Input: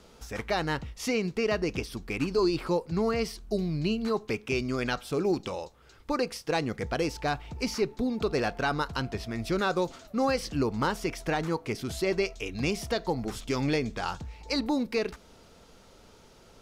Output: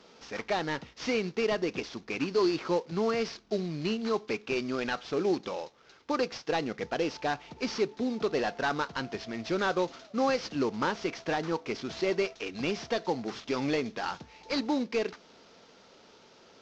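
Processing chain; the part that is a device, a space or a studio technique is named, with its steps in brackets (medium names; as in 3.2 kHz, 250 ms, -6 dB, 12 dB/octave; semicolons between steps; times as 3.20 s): early wireless headset (high-pass 210 Hz 12 dB/octave; CVSD coder 32 kbps)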